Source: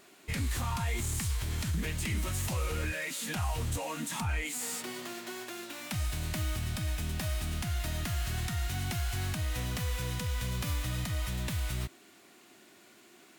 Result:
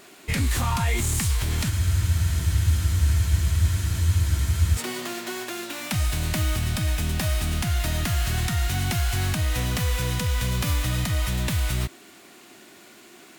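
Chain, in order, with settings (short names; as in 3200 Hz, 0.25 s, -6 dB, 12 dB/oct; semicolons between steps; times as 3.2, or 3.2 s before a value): crackle 160/s -53 dBFS; spectral freeze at 1.71, 3.07 s; gain +9 dB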